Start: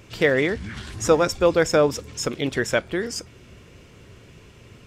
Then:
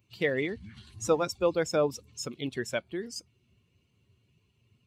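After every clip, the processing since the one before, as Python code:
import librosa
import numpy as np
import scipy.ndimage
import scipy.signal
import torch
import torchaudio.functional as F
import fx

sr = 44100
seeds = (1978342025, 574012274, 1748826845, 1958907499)

y = fx.bin_expand(x, sr, power=1.5)
y = scipy.signal.sosfilt(scipy.signal.butter(2, 95.0, 'highpass', fs=sr, output='sos'), y)
y = fx.peak_eq(y, sr, hz=1600.0, db=-5.5, octaves=0.21)
y = y * 10.0 ** (-6.5 / 20.0)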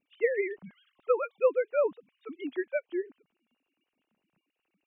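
y = fx.sine_speech(x, sr)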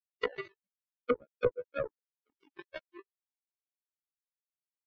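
y = fx.freq_snap(x, sr, grid_st=2)
y = fx.power_curve(y, sr, exponent=3.0)
y = fx.env_lowpass_down(y, sr, base_hz=470.0, full_db=-32.5)
y = y * 10.0 ** (6.0 / 20.0)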